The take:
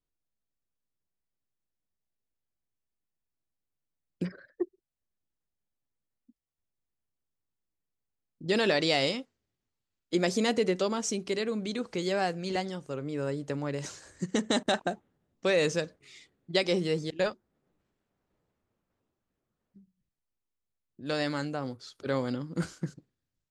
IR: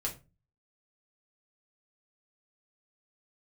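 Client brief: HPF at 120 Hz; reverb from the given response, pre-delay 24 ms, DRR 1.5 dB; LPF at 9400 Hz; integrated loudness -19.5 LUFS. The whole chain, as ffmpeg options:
-filter_complex "[0:a]highpass=120,lowpass=9.4k,asplit=2[a][b];[1:a]atrim=start_sample=2205,adelay=24[c];[b][c]afir=irnorm=-1:irlink=0,volume=-4dB[d];[a][d]amix=inputs=2:normalize=0,volume=9dB"

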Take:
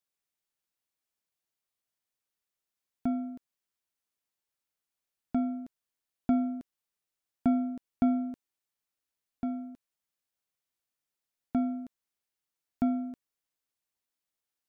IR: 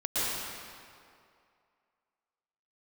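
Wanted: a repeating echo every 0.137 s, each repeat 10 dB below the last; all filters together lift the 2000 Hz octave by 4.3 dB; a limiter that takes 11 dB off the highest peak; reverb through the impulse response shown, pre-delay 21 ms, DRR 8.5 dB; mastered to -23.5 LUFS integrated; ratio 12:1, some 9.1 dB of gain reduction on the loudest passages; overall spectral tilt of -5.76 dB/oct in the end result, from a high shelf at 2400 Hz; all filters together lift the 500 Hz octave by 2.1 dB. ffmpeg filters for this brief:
-filter_complex "[0:a]equalizer=f=500:t=o:g=3.5,equalizer=f=2k:t=o:g=7.5,highshelf=f=2.4k:g=-4.5,acompressor=threshold=-29dB:ratio=12,alimiter=level_in=5dB:limit=-24dB:level=0:latency=1,volume=-5dB,aecho=1:1:137|274|411|548:0.316|0.101|0.0324|0.0104,asplit=2[a][b];[1:a]atrim=start_sample=2205,adelay=21[c];[b][c]afir=irnorm=-1:irlink=0,volume=-18.5dB[d];[a][d]amix=inputs=2:normalize=0,volume=17.5dB"

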